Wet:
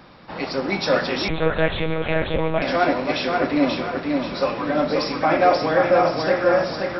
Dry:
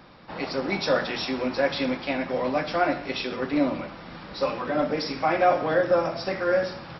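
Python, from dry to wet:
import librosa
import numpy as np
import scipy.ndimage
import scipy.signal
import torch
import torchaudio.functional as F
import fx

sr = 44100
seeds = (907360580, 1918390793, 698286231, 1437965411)

p1 = x + fx.echo_feedback(x, sr, ms=533, feedback_pct=42, wet_db=-3.5, dry=0)
p2 = fx.lpc_monotone(p1, sr, seeds[0], pitch_hz=160.0, order=10, at=(1.28, 2.62))
y = p2 * 10.0 ** (3.5 / 20.0)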